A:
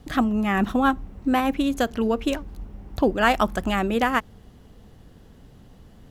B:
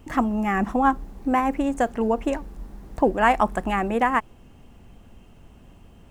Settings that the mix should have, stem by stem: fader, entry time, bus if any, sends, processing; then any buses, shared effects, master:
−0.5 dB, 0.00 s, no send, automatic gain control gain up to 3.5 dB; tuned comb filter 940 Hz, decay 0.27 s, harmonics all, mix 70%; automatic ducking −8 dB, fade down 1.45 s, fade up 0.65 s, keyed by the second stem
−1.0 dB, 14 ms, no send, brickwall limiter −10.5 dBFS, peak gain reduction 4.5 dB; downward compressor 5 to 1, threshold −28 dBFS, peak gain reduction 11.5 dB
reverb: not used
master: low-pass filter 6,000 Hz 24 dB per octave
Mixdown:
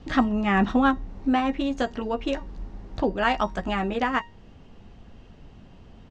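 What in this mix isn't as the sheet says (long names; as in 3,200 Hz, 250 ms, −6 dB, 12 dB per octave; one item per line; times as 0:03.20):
stem A −0.5 dB → +11.0 dB
stem B: polarity flipped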